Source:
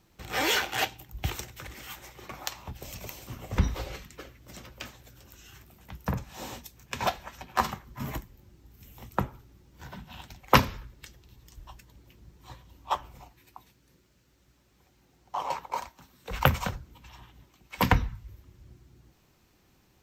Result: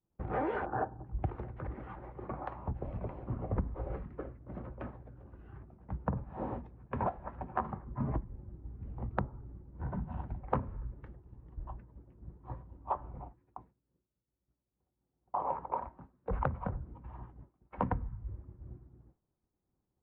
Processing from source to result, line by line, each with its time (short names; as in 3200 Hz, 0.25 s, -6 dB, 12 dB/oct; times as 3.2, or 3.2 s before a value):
0.66–1.06 spectral gain 1800–12000 Hz -20 dB
8.09–10.92 low shelf 140 Hz +5.5 dB
whole clip: expander -49 dBFS; Bessel low-pass 820 Hz, order 4; compressor 10:1, threshold -35 dBFS; gain +5.5 dB